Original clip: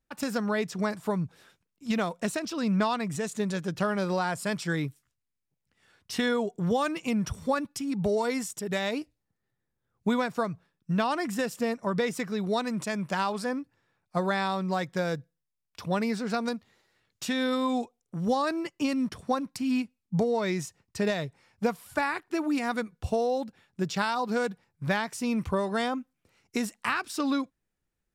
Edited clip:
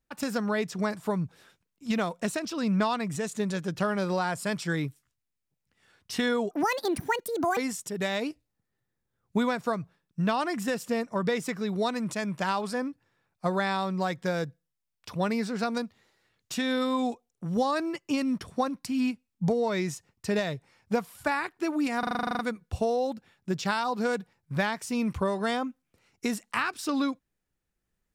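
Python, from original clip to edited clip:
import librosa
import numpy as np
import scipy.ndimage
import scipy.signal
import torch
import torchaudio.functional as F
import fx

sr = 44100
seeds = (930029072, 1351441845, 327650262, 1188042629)

y = fx.edit(x, sr, fx.speed_span(start_s=6.51, length_s=1.77, speed=1.67),
    fx.stutter(start_s=22.7, slice_s=0.04, count=11), tone=tone)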